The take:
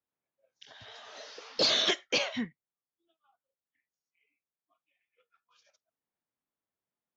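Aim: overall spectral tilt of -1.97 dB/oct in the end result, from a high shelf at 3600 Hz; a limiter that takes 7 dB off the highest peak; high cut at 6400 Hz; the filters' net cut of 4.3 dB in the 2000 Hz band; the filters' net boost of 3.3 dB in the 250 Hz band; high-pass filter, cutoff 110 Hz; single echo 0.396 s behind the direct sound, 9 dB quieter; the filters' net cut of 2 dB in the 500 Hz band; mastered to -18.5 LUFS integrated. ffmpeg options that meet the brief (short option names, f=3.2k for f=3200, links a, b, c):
-af "highpass=110,lowpass=6.4k,equalizer=f=250:t=o:g=5,equalizer=f=500:t=o:g=-3.5,equalizer=f=2k:t=o:g=-7.5,highshelf=f=3.6k:g=6,alimiter=limit=-22dB:level=0:latency=1,aecho=1:1:396:0.355,volume=14dB"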